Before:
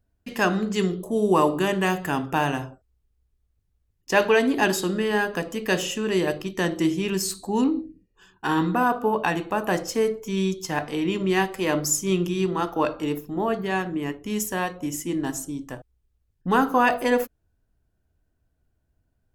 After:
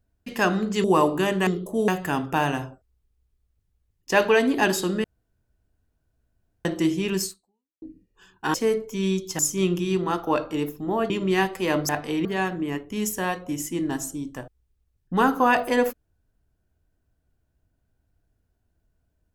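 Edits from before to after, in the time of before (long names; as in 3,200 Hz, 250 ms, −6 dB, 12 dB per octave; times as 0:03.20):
0:00.84–0:01.25: move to 0:01.88
0:05.04–0:06.65: fill with room tone
0:07.24–0:07.82: fade out exponential
0:08.54–0:09.88: remove
0:10.73–0:11.09: swap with 0:11.88–0:13.59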